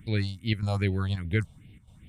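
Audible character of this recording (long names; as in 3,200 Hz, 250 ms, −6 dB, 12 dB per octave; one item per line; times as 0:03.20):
chopped level 1.6 Hz, depth 60%, duty 85%
phaser sweep stages 4, 2.5 Hz, lowest notch 310–1,200 Hz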